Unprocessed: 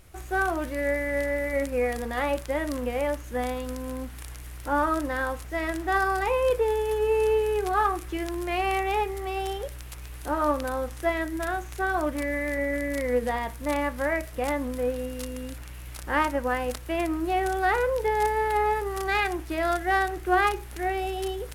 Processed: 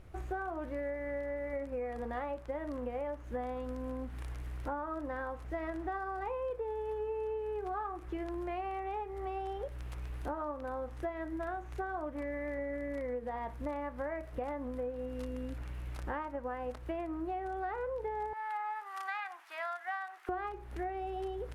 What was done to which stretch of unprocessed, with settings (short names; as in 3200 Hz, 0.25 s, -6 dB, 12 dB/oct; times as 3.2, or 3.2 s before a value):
18.33–20.29 HPF 940 Hz 24 dB/oct
whole clip: LPF 1100 Hz 6 dB/oct; dynamic EQ 860 Hz, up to +5 dB, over -39 dBFS, Q 0.73; compressor 10:1, threshold -35 dBFS